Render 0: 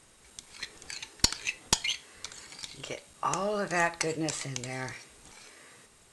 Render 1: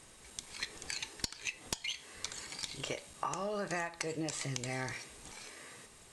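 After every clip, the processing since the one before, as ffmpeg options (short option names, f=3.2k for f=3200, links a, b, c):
-af "bandreject=f=1.4k:w=15,alimiter=limit=-11.5dB:level=0:latency=1:release=481,acompressor=threshold=-35dB:ratio=16,volume=2dB"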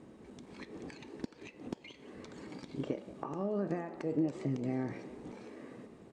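-filter_complex "[0:a]acompressor=threshold=-38dB:ratio=6,bandpass=f=260:t=q:w=1.8:csg=0,asplit=7[a][b][c][d][e][f][g];[b]adelay=178,afreqshift=58,volume=-17dB[h];[c]adelay=356,afreqshift=116,volume=-21.4dB[i];[d]adelay=534,afreqshift=174,volume=-25.9dB[j];[e]adelay=712,afreqshift=232,volume=-30.3dB[k];[f]adelay=890,afreqshift=290,volume=-34.7dB[l];[g]adelay=1068,afreqshift=348,volume=-39.2dB[m];[a][h][i][j][k][l][m]amix=inputs=7:normalize=0,volume=15dB"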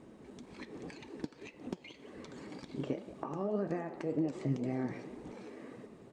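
-af "flanger=delay=0.8:depth=7.5:regen=59:speed=1.9:shape=triangular,volume=4.5dB"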